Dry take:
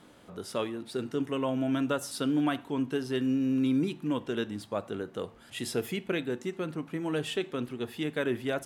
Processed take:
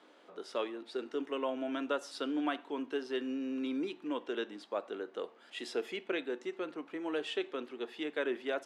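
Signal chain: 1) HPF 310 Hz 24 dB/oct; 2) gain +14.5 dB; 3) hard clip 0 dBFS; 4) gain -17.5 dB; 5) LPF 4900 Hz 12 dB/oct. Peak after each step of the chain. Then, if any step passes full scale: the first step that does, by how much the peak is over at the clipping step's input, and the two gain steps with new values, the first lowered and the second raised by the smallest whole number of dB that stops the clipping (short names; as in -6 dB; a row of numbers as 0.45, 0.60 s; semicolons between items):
-17.0, -2.5, -2.5, -20.0, -20.0 dBFS; no overload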